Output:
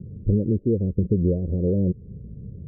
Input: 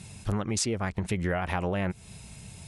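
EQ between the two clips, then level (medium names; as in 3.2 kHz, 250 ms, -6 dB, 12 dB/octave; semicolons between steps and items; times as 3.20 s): steep low-pass 520 Hz 72 dB/octave; +9.0 dB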